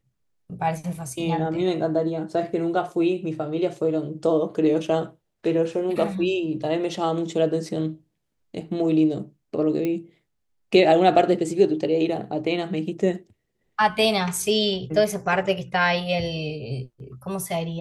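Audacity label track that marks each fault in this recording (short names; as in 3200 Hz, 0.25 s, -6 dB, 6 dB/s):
9.850000	9.850000	pop -15 dBFS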